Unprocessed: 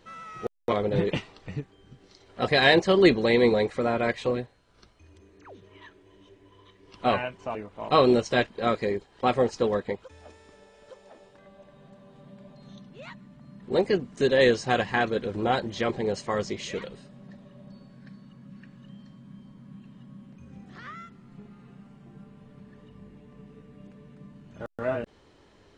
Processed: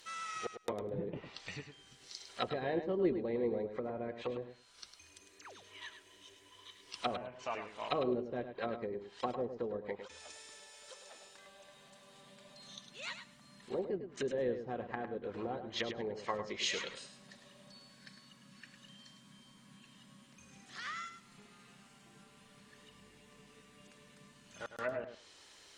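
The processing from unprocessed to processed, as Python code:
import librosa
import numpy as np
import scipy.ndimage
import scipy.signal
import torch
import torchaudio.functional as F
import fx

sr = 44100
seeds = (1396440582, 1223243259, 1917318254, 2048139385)

y = fx.env_lowpass_down(x, sr, base_hz=410.0, full_db=-22.5)
y = librosa.effects.preemphasis(y, coef=0.97, zi=[0.0])
y = fx.echo_feedback(y, sr, ms=104, feedback_pct=15, wet_db=-9.0)
y = y * 10.0 ** (13.0 / 20.0)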